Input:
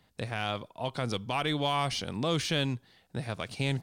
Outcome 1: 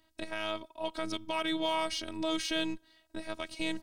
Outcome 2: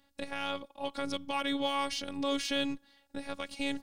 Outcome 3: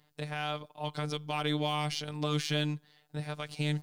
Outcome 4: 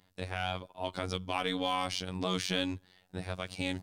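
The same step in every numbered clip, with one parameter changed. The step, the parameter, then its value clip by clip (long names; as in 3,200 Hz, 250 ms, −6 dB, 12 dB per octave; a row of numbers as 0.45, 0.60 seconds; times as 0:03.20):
phases set to zero, frequency: 320, 280, 150, 92 Hertz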